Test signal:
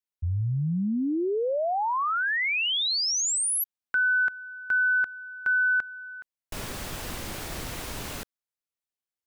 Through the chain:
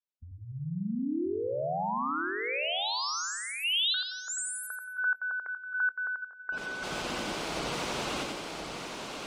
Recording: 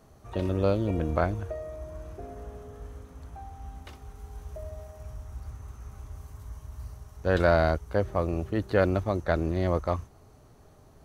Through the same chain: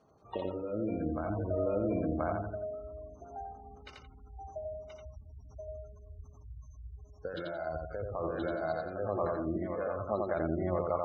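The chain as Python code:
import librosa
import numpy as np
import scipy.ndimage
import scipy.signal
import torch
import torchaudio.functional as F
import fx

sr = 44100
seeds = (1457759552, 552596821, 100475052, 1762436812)

p1 = x + fx.echo_single(x, sr, ms=1029, db=-4.5, dry=0)
p2 = fx.over_compress(p1, sr, threshold_db=-30.0, ratio=-1.0)
p3 = fx.peak_eq(p2, sr, hz=1800.0, db=-6.5, octaves=0.36)
p4 = fx.noise_reduce_blind(p3, sr, reduce_db=9)
p5 = fx.echo_feedback(p4, sr, ms=87, feedback_pct=45, wet_db=-3)
p6 = fx.spec_gate(p5, sr, threshold_db=-30, keep='strong')
p7 = fx.highpass(p6, sr, hz=260.0, slope=6)
y = fx.air_absorb(p7, sr, metres=86.0)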